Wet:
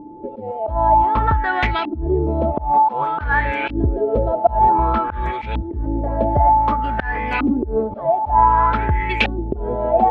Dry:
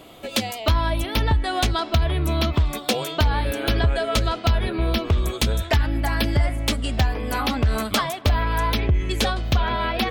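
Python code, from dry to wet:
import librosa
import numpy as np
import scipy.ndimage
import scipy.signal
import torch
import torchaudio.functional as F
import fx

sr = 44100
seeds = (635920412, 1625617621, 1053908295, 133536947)

y = x + 10.0 ** (-25.0 / 20.0) * np.sin(2.0 * np.pi * 870.0 * np.arange(len(x)) / sr)
y = fx.auto_swell(y, sr, attack_ms=140.0)
y = fx.filter_lfo_lowpass(y, sr, shape='saw_up', hz=0.54, low_hz=280.0, high_hz=2600.0, q=6.4)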